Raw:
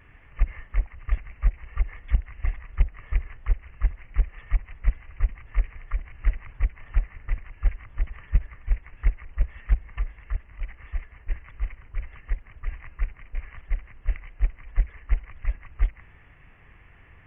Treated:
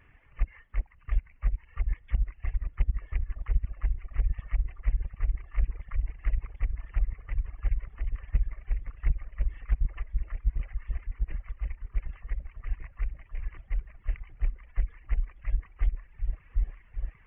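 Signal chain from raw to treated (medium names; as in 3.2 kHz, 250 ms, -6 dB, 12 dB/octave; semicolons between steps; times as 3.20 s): delay with an opening low-pass 748 ms, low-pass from 200 Hz, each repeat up 1 oct, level 0 dB; reverb removal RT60 1.1 s; trim -5.5 dB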